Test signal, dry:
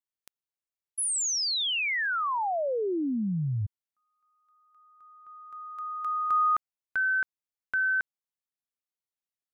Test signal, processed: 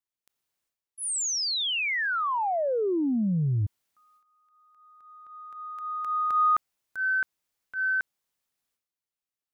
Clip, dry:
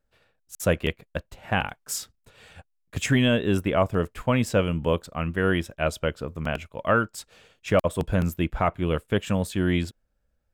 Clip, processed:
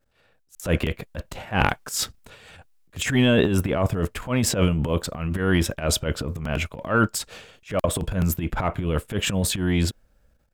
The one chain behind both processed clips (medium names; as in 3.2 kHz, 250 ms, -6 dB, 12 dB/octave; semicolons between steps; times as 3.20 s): gain riding within 4 dB 2 s; transient shaper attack -12 dB, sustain +11 dB; trim +2 dB